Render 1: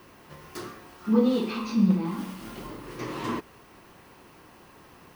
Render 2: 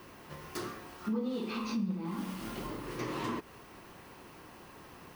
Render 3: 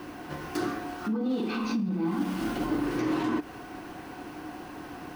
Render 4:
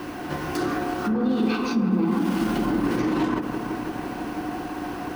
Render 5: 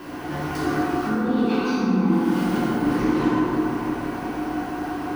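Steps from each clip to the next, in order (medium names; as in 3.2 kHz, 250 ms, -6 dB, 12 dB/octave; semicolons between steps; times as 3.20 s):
compression 4:1, threshold -33 dBFS, peak gain reduction 15 dB
treble shelf 8.9 kHz -6 dB; peak limiter -32 dBFS, peak gain reduction 7.5 dB; small resonant body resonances 300/730/1500 Hz, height 13 dB, ringing for 65 ms; trim +7 dB
peak limiter -25 dBFS, peak gain reduction 7.5 dB; on a send: feedback echo behind a low-pass 165 ms, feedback 82%, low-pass 1.3 kHz, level -7 dB; on the sum: endings held to a fixed fall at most 170 dB/s; trim +7.5 dB
plate-style reverb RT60 2.5 s, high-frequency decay 0.5×, DRR -6.5 dB; trim -5.5 dB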